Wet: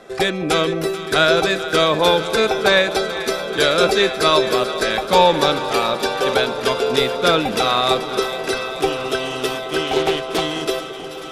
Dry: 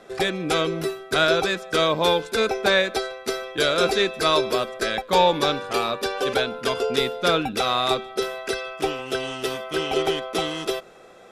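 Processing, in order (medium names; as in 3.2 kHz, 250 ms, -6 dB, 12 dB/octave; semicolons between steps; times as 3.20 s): on a send: echo whose repeats swap between lows and highs 217 ms, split 900 Hz, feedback 88%, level -12 dB; 9.84–10.41 s: on the sum: loudspeaker Doppler distortion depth 0.21 ms; trim +4.5 dB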